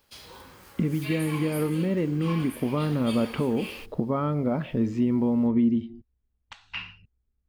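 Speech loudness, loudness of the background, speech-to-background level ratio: -26.5 LUFS, -40.0 LUFS, 13.5 dB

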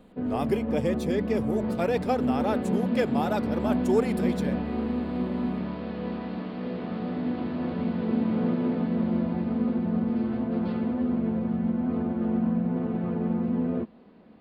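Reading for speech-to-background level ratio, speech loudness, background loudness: -1.5 dB, -30.0 LUFS, -28.5 LUFS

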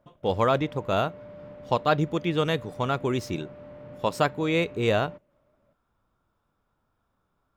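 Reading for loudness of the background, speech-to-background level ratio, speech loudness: -44.5 LUFS, 18.0 dB, -26.5 LUFS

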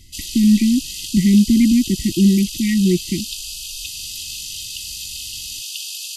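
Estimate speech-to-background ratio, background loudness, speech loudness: 11.0 dB, -27.5 LUFS, -16.5 LUFS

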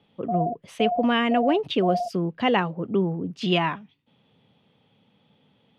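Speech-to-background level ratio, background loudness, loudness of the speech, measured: 5.0 dB, -30.0 LUFS, -25.0 LUFS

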